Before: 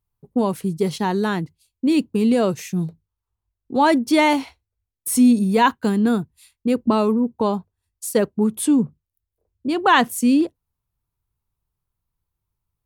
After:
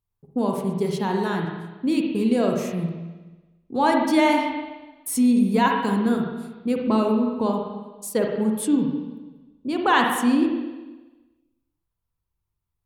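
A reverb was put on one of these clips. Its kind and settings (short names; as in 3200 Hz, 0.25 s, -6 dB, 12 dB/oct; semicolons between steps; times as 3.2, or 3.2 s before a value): spring tank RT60 1.2 s, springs 41/54/60 ms, chirp 40 ms, DRR 1 dB; gain -5 dB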